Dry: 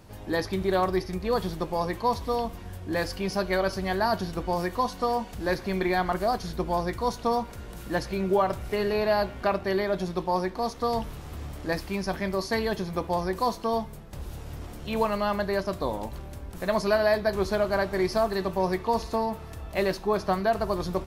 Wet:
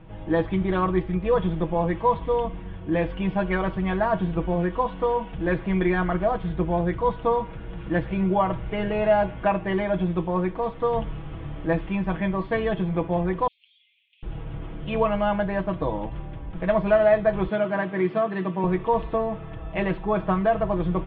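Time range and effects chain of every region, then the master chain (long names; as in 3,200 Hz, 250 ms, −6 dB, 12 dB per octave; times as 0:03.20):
0:13.47–0:14.23: Butterworth high-pass 2,300 Hz 72 dB per octave + downward compressor 3 to 1, threshold −53 dBFS
0:17.48–0:18.64: high-pass filter 160 Hz 24 dB per octave + parametric band 780 Hz −5 dB 0.8 octaves
whole clip: Chebyshev low-pass filter 3,400 Hz, order 6; low-shelf EQ 260 Hz +7 dB; comb filter 6.2 ms, depth 74%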